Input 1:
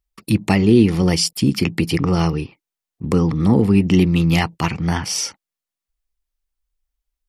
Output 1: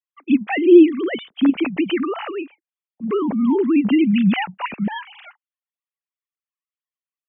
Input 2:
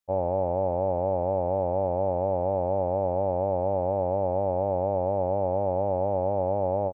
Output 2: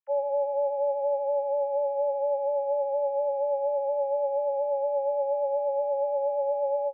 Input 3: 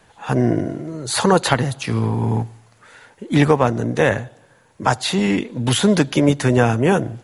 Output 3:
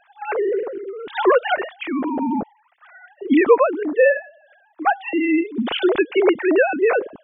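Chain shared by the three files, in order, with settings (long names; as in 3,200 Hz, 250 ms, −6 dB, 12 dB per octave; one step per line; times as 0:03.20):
three sine waves on the formant tracks
level −1 dB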